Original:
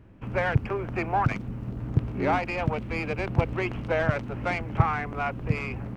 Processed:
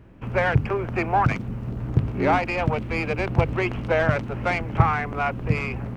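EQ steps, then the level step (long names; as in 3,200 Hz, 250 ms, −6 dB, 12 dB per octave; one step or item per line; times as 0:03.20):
mains-hum notches 50/100/150/200/250/300 Hz
+4.5 dB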